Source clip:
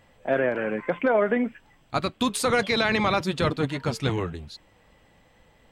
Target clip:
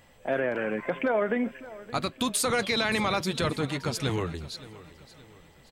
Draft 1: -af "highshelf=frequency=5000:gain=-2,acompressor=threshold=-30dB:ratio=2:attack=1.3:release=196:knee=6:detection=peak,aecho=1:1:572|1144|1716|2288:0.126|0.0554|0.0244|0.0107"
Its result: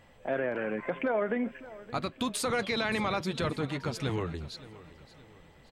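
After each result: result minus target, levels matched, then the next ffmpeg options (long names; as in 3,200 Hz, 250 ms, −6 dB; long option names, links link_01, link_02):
8,000 Hz band −4.0 dB; downward compressor: peak gain reduction +3 dB
-af "highshelf=frequency=5000:gain=8.5,acompressor=threshold=-30dB:ratio=2:attack=1.3:release=196:knee=6:detection=peak,aecho=1:1:572|1144|1716|2288:0.126|0.0554|0.0244|0.0107"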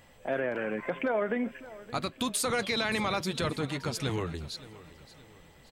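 downward compressor: peak gain reduction +3 dB
-af "highshelf=frequency=5000:gain=8.5,acompressor=threshold=-23.5dB:ratio=2:attack=1.3:release=196:knee=6:detection=peak,aecho=1:1:572|1144|1716|2288:0.126|0.0554|0.0244|0.0107"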